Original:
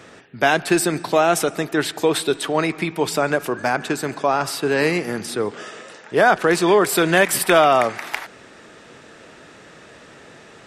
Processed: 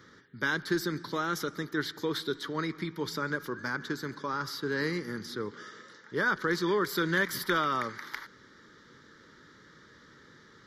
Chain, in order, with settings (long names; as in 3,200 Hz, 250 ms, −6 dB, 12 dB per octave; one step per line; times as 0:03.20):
phaser with its sweep stopped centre 2,600 Hz, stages 6
level −8.5 dB